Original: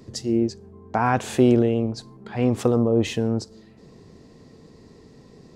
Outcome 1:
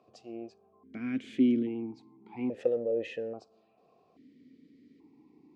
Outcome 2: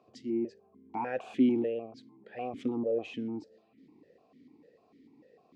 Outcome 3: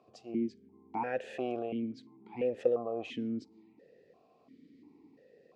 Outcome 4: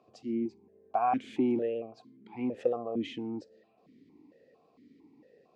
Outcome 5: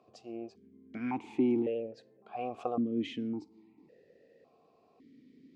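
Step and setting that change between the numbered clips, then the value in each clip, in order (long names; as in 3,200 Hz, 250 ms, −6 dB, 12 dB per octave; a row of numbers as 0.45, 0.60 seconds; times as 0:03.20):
formant filter that steps through the vowels, speed: 1.2, 6.7, 2.9, 4.4, 1.8 Hertz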